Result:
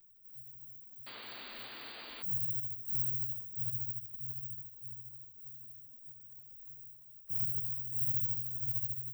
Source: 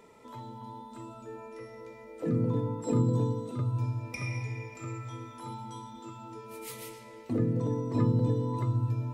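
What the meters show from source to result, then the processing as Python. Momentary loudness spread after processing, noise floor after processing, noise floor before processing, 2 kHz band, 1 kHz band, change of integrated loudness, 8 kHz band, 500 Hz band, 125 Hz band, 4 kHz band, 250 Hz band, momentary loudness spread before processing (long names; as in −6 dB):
18 LU, −55 dBFS, −49 dBFS, −7.0 dB, below −15 dB, −3.0 dB, below −20 dB, below −25 dB, −17.5 dB, +1.5 dB, below −25 dB, 18 LU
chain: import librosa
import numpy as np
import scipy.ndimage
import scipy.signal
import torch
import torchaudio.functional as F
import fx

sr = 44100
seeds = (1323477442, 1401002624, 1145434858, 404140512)

p1 = fx.envelope_flatten(x, sr, power=0.1)
p2 = scipy.signal.sosfilt(scipy.signal.cheby2(4, 70, [590.0, 9900.0], 'bandstop', fs=sr, output='sos'), p1)
p3 = fx.peak_eq(p2, sr, hz=92.0, db=-12.5, octaves=2.6)
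p4 = 10.0 ** (-32.5 / 20.0) * np.tanh(p3 / 10.0 ** (-32.5 / 20.0))
p5 = p3 + (p4 * 10.0 ** (-9.5 / 20.0))
p6 = fx.spec_paint(p5, sr, seeds[0], shape='noise', start_s=1.06, length_s=1.17, low_hz=200.0, high_hz=4800.0, level_db=-52.0)
p7 = fx.dmg_crackle(p6, sr, seeds[1], per_s=16.0, level_db=-60.0)
y = p7 * 10.0 ** (3.5 / 20.0)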